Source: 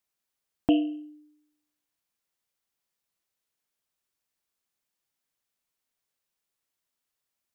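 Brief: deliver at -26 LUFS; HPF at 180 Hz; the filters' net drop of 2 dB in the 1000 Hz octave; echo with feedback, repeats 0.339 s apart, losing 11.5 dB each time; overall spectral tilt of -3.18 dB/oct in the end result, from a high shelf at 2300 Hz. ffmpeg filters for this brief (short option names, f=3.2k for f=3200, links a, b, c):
-af "highpass=180,equalizer=f=1k:t=o:g=-5,highshelf=f=2.3k:g=6.5,aecho=1:1:339|678|1017:0.266|0.0718|0.0194,volume=3.5dB"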